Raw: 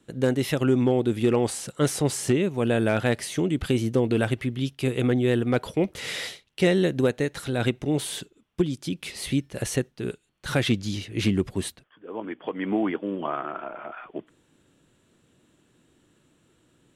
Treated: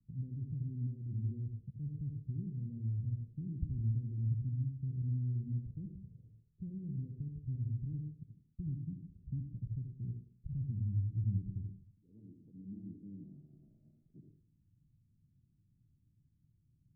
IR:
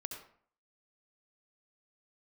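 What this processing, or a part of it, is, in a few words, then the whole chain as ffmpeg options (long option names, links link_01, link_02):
club heard from the street: -filter_complex "[0:a]alimiter=limit=-21dB:level=0:latency=1,lowpass=frequency=150:width=0.5412,lowpass=frequency=150:width=1.3066[link_01];[1:a]atrim=start_sample=2205[link_02];[link_01][link_02]afir=irnorm=-1:irlink=0,volume=1dB"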